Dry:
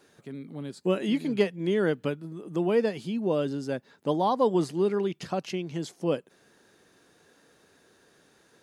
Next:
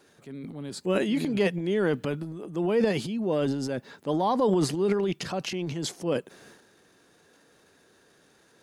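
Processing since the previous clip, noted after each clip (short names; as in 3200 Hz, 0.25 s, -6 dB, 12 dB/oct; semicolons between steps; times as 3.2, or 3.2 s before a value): transient shaper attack -3 dB, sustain +10 dB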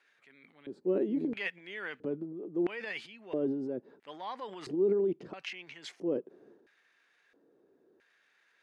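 LFO band-pass square 0.75 Hz 360–2100 Hz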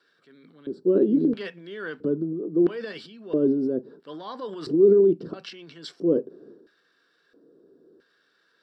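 reverb RT60 0.20 s, pre-delay 3 ms, DRR 12 dB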